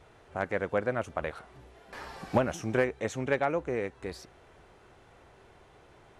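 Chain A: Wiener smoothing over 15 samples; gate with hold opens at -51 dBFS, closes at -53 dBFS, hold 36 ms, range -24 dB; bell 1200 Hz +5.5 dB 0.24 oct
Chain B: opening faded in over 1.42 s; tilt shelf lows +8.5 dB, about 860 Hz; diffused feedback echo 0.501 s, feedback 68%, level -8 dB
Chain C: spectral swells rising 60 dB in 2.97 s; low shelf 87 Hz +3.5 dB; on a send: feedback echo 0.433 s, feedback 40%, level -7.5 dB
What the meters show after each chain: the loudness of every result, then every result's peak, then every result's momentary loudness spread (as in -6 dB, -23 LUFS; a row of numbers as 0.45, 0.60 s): -31.5, -29.0, -25.5 LUFS; -11.5, -9.0, -7.0 dBFS; 17, 15, 14 LU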